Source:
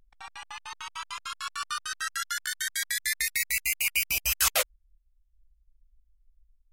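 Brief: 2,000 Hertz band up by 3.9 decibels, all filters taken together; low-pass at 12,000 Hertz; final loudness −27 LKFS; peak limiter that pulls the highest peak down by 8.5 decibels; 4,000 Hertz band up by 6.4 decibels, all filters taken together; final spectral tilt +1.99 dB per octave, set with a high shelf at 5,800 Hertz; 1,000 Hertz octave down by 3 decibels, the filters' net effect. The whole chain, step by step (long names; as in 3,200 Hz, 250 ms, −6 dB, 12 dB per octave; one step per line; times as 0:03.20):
low-pass filter 12,000 Hz
parametric band 1,000 Hz −7 dB
parametric band 2,000 Hz +4 dB
parametric band 4,000 Hz +4.5 dB
high-shelf EQ 5,800 Hz +7.5 dB
level −0.5 dB
brickwall limiter −15.5 dBFS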